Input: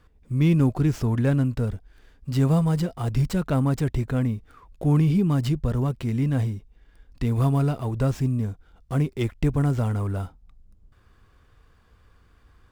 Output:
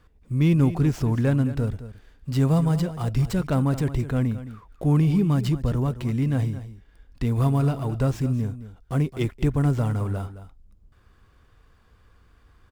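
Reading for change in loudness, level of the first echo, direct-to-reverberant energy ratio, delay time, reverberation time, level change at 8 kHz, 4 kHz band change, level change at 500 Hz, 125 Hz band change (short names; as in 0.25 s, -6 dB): 0.0 dB, -13.5 dB, none, 0.216 s, none, n/a, 0.0 dB, 0.0 dB, +0.5 dB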